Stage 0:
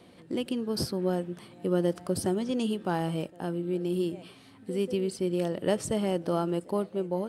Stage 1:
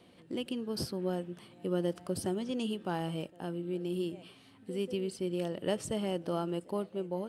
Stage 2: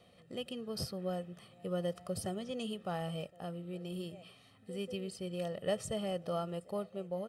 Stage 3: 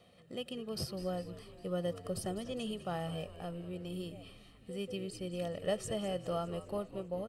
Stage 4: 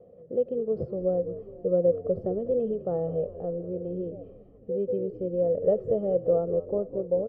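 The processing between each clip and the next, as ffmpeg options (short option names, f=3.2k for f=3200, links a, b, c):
-af "equalizer=f=2.9k:t=o:w=0.38:g=4.5,volume=-5.5dB"
-af "aecho=1:1:1.6:0.72,volume=-4dB"
-filter_complex "[0:a]asplit=7[a][b][c][d][e][f][g];[b]adelay=202,afreqshift=-78,volume=-14dB[h];[c]adelay=404,afreqshift=-156,volume=-18.9dB[i];[d]adelay=606,afreqshift=-234,volume=-23.8dB[j];[e]adelay=808,afreqshift=-312,volume=-28.6dB[k];[f]adelay=1010,afreqshift=-390,volume=-33.5dB[l];[g]adelay=1212,afreqshift=-468,volume=-38.4dB[m];[a][h][i][j][k][l][m]amix=inputs=7:normalize=0"
-af "lowpass=f=490:t=q:w=4.9,volume=4dB"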